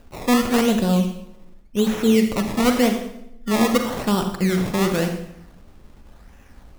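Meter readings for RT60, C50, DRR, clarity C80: 0.80 s, 7.0 dB, 5.5 dB, 9.5 dB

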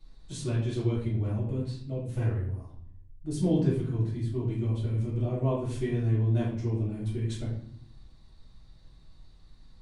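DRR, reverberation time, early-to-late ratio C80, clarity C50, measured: −8.5 dB, 0.65 s, 7.5 dB, 3.0 dB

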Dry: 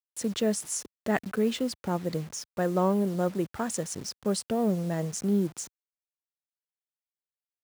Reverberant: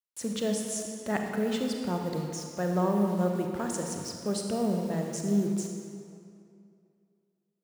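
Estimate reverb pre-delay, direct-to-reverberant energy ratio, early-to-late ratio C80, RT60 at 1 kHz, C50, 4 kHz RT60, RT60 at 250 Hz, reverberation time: 33 ms, 2.0 dB, 4.0 dB, 2.4 s, 2.5 dB, 1.7 s, 2.5 s, 2.5 s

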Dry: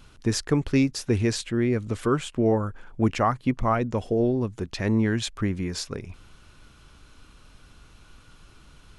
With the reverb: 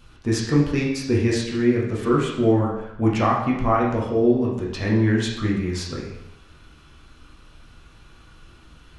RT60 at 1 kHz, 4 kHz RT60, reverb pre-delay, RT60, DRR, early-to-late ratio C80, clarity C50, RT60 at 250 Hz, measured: 0.85 s, 0.75 s, 6 ms, 0.85 s, −4.5 dB, 6.0 dB, 2.5 dB, 0.80 s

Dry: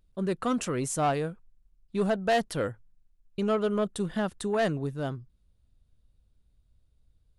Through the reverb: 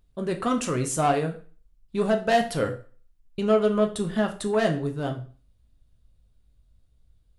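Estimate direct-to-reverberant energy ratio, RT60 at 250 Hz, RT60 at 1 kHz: 4.0 dB, 0.40 s, 0.40 s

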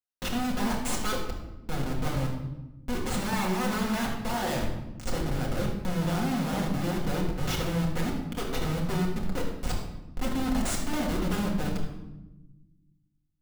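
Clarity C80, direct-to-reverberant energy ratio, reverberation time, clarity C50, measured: 6.5 dB, −3.0 dB, 1.0 s, 4.0 dB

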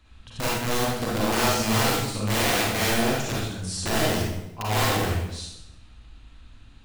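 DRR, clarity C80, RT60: −5.5 dB, 2.5 dB, 0.90 s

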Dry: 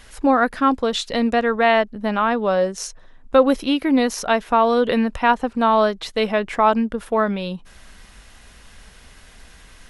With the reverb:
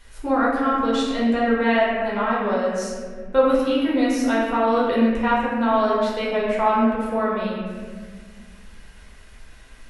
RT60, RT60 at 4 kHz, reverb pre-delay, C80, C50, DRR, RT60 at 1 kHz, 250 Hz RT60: 1.7 s, 1.2 s, 4 ms, 1.5 dB, −1.0 dB, −6.5 dB, 1.5 s, 2.5 s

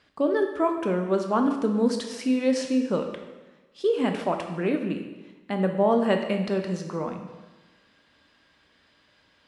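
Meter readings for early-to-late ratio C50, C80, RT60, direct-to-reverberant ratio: 7.0 dB, 8.5 dB, 1.2 s, 4.5 dB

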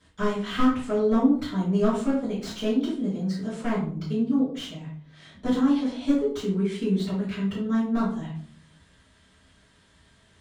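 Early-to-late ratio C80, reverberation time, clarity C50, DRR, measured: 9.0 dB, 0.50 s, 4.0 dB, −11.0 dB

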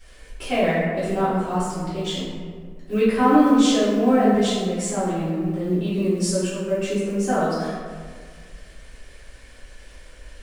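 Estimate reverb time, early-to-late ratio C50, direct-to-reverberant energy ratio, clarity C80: 1.8 s, −1.5 dB, −15.0 dB, 1.0 dB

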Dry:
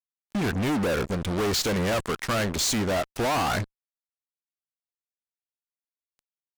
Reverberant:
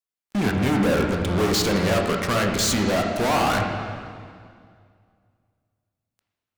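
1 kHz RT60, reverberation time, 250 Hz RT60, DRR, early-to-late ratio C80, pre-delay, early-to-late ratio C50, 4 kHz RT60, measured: 2.0 s, 2.1 s, 2.4 s, 1.5 dB, 4.5 dB, 14 ms, 3.5 dB, 1.9 s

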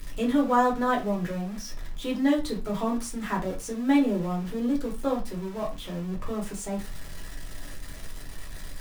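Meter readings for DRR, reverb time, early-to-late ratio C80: −2.0 dB, non-exponential decay, 18.0 dB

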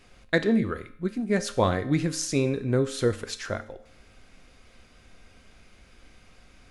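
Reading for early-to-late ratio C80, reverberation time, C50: 17.5 dB, 0.60 s, 14.5 dB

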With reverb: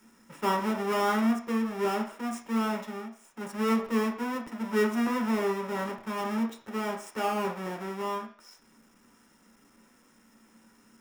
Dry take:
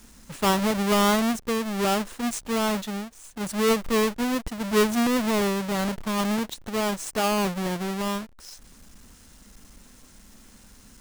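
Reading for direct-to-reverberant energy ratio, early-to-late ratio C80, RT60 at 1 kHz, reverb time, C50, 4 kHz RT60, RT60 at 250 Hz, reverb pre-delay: 2.0 dB, 14.0 dB, 0.55 s, 0.50 s, 8.5 dB, 0.55 s, 0.35 s, 3 ms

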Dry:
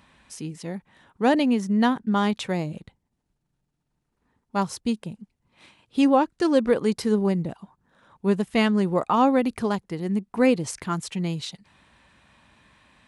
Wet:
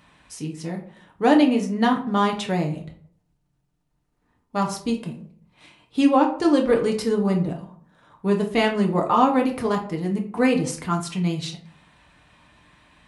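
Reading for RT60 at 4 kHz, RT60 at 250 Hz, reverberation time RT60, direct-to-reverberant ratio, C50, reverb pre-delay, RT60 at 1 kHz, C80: 0.30 s, 0.65 s, 0.55 s, 1.0 dB, 10.0 dB, 7 ms, 0.50 s, 14.0 dB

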